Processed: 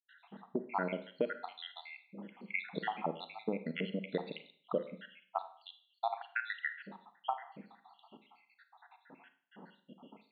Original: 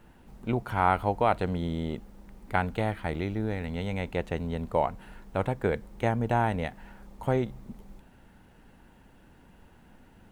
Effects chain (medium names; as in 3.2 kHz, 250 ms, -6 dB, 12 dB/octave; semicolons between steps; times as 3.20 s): random holes in the spectrogram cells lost 84%; compression 4:1, threshold -39 dBFS, peak gain reduction 14 dB; brick-wall FIR band-pass 160–4600 Hz; Schroeder reverb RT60 0.51 s, combs from 33 ms, DRR 10 dB; trim +7.5 dB